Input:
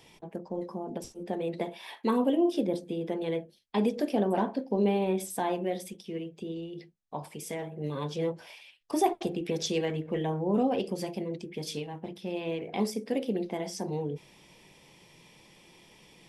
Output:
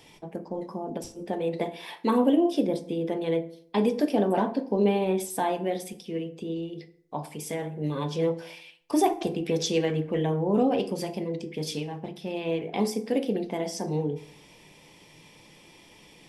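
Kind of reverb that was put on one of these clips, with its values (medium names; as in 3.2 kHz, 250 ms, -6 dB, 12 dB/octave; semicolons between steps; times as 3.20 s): FDN reverb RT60 0.63 s, low-frequency decay 1.1×, high-frequency decay 0.65×, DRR 10 dB; trim +3 dB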